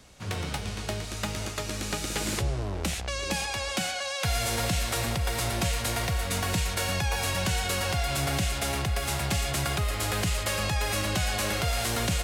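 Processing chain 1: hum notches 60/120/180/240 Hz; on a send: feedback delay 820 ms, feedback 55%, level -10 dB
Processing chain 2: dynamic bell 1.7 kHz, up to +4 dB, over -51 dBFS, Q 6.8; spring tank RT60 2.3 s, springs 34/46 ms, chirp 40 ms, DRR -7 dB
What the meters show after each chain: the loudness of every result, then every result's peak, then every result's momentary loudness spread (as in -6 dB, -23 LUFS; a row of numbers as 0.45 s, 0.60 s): -28.5 LUFS, -21.5 LUFS; -14.5 dBFS, -7.5 dBFS; 6 LU, 6 LU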